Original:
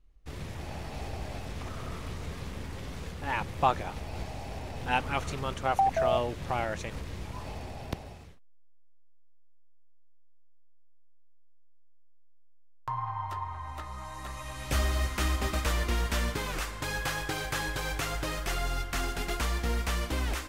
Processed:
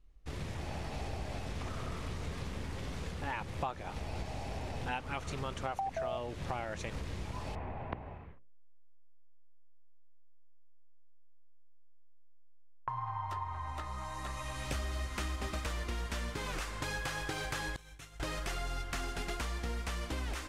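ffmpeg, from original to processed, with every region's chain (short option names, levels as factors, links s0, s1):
-filter_complex "[0:a]asettb=1/sr,asplit=3[s0][s1][s2];[s0]atrim=end=7.554[s3];[s1]atrim=start=7.55:end=12.89,asetpts=PTS-STARTPTS,afade=t=in:d=0.004:c=qsin,afade=t=out:st=5.336:d=0.004:c=qsin,lowpass=f=2300:w=0.5412,lowpass=f=2300:w=1.3066,equalizer=f=1000:w=4.5:g=6,bandreject=f=60:t=h:w=6,bandreject=f=120:t=h:w=6,bandreject=f=180:t=h:w=6,bandreject=f=240:t=h:w=6,bandreject=f=300:t=h:w=6,bandreject=f=360:t=h:w=6,bandreject=f=420:t=h:w=6,bandreject=f=480:t=h:w=6,bandreject=f=540:t=h:w=6,bandreject=f=600:t=h:w=6[s4];[s2]atrim=start=12.886[s5];[s3][s4]acrossfade=d=0.004:c1=hsin:c2=qsin[s6];[s6][s5]acrossfade=d=0.004:c1=qsin:c2=hsin,asettb=1/sr,asplit=3[s7][s8][s9];[s7]atrim=end=17.764[s10];[s8]atrim=start=17.76:end=18.2,asetpts=PTS-STARTPTS,afade=t=in:d=0.004:c=qsin,afade=t=out:st=0.436:d=0.004:c=qsin,agate=range=0.0224:threshold=0.0794:ratio=3:release=100:detection=peak,equalizer=f=690:t=o:w=2.9:g=-9,bandreject=f=4700:w=8.3[s11];[s9]atrim=start=18.196[s12];[s10][s11]acrossfade=d=0.004:c1=hsin:c2=qsin[s13];[s13][s12]acrossfade=d=0.004:c1=qsin:c2=hsin,acompressor=threshold=0.02:ratio=6,lowpass=11000"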